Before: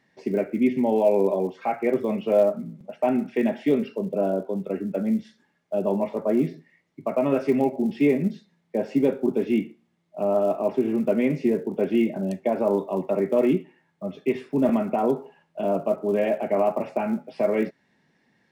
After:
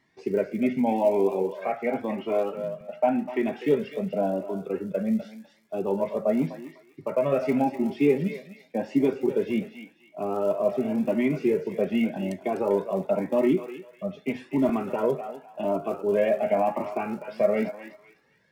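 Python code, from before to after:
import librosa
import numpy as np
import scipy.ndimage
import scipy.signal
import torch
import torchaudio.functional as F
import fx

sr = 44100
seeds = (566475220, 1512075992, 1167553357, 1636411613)

y = fx.bass_treble(x, sr, bass_db=-4, treble_db=-5, at=(1.43, 3.48))
y = fx.echo_thinned(y, sr, ms=250, feedback_pct=29, hz=910.0, wet_db=-7.5)
y = fx.comb_cascade(y, sr, direction='rising', hz=0.89)
y = y * 10.0 ** (3.5 / 20.0)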